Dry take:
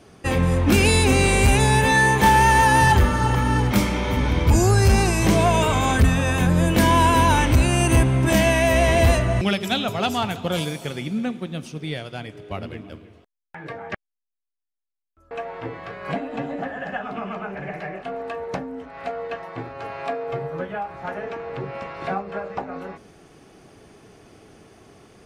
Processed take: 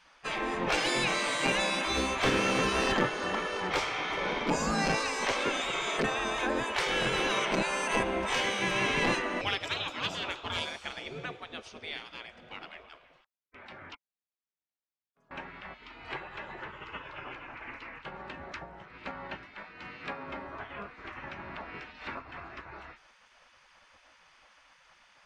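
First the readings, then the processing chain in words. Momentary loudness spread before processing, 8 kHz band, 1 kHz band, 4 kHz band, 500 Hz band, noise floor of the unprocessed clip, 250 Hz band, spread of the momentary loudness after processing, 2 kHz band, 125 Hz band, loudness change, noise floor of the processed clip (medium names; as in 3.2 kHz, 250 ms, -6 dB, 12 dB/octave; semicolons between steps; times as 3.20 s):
18 LU, -11.5 dB, -12.0 dB, -5.0 dB, -10.5 dB, -83 dBFS, -14.0 dB, 18 LU, -7.5 dB, -23.0 dB, -11.0 dB, under -85 dBFS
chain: distance through air 120 m; in parallel at -8 dB: one-sided clip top -16 dBFS, bottom -12 dBFS; on the sum: spectral gate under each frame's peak -15 dB weak; trim -3.5 dB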